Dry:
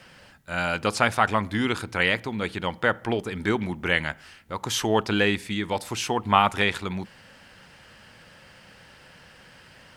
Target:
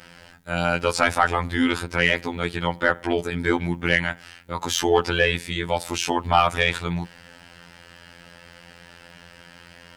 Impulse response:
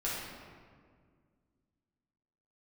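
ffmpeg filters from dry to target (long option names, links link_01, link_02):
-af "afftfilt=real='hypot(re,im)*cos(PI*b)':imag='0':win_size=2048:overlap=0.75,acontrast=79,bandreject=frequency=1100:width=15"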